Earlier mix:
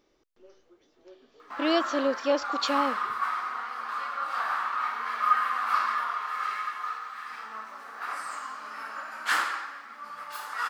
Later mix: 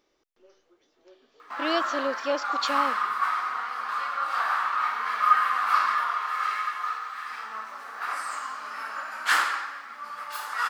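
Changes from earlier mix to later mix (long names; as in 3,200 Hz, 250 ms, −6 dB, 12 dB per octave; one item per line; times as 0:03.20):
background +4.0 dB
master: add low-shelf EQ 360 Hz −8 dB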